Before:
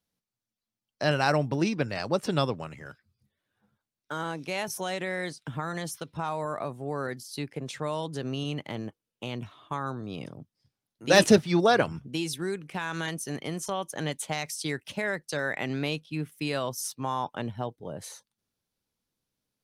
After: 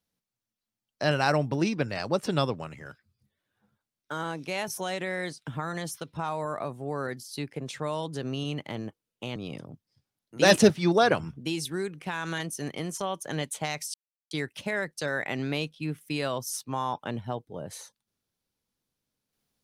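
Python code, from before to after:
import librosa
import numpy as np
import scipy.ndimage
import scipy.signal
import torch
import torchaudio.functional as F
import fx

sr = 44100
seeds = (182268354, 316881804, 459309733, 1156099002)

y = fx.edit(x, sr, fx.cut(start_s=9.36, length_s=0.68),
    fx.insert_silence(at_s=14.62, length_s=0.37), tone=tone)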